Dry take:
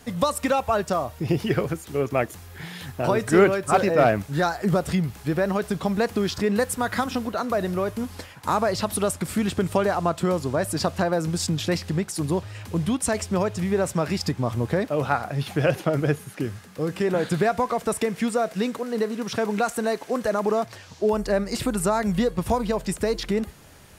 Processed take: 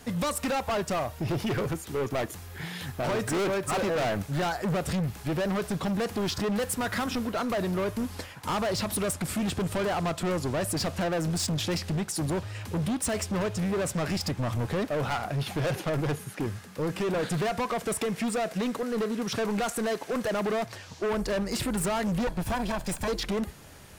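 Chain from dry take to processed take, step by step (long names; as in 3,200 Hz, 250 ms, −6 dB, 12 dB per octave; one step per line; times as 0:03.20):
0:22.27–0:23.08: lower of the sound and its delayed copy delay 1.2 ms
gain into a clipping stage and back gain 25.5 dB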